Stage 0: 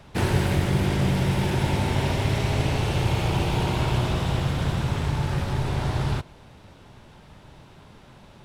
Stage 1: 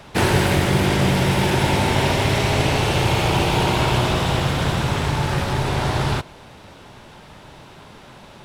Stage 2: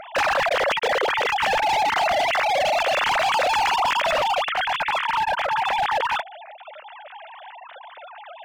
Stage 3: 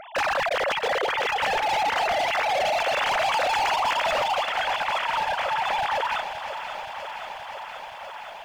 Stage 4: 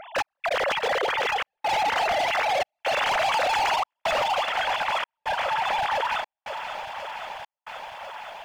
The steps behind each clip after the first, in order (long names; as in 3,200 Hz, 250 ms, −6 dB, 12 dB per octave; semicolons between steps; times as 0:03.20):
low-shelf EQ 210 Hz −8.5 dB; level +9 dB
three sine waves on the formant tracks; hard clipping −18.5 dBFS, distortion −10 dB
feedback echo at a low word length 523 ms, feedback 80%, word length 9 bits, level −11 dB; level −3.5 dB
gate pattern "xx..xxxxxxx" 137 BPM −60 dB